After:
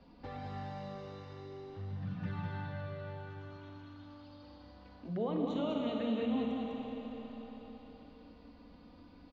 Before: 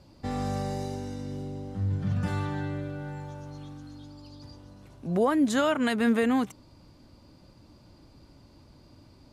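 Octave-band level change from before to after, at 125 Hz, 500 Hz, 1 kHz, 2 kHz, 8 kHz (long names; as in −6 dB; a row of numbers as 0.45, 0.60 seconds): −10.0 dB, −8.5 dB, −10.5 dB, −15.0 dB, below −25 dB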